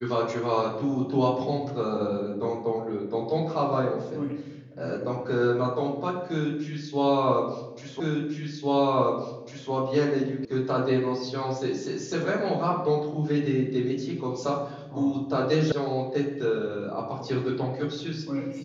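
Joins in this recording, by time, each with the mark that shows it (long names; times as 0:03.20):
0:08.00: the same again, the last 1.7 s
0:10.45: cut off before it has died away
0:15.72: cut off before it has died away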